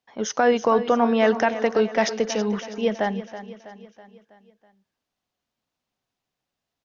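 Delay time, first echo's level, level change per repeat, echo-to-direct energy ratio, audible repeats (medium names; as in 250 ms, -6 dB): 325 ms, -13.0 dB, -5.5 dB, -11.5 dB, 4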